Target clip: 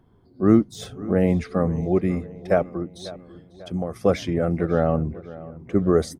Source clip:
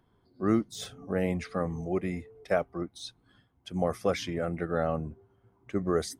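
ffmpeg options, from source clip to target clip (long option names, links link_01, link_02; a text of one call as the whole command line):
ffmpeg -i in.wav -filter_complex "[0:a]tiltshelf=frequency=800:gain=5,asettb=1/sr,asplit=3[link_01][link_02][link_03];[link_01]atrim=end=2.634[link_04];[link_02]atrim=start=2.63:end=3.96,asetpts=PTS-STARTPTS,afade=type=in:duration=0.004:curve=qsin,afade=type=out:start_time=1.326:duration=0.004:curve=qsin,acompressor=threshold=-30dB:ratio=6[link_05];[link_03]atrim=start=3.956[link_06];[link_04][link_05]acrossfade=duration=0.004:curve1=hsin:curve2=qsin[link_07];[link_07][link_06]acrossfade=duration=0.004:curve1=qsin:curve2=hsin,asplit=2[link_08][link_09];[link_09]adelay=545,lowpass=frequency=3500:poles=1,volume=-17.5dB,asplit=2[link_10][link_11];[link_11]adelay=545,lowpass=frequency=3500:poles=1,volume=0.52,asplit=2[link_12][link_13];[link_13]adelay=545,lowpass=frequency=3500:poles=1,volume=0.52,asplit=2[link_14][link_15];[link_15]adelay=545,lowpass=frequency=3500:poles=1,volume=0.52[link_16];[link_08][link_10][link_12][link_14][link_16]amix=inputs=5:normalize=0,volume=6dB" out.wav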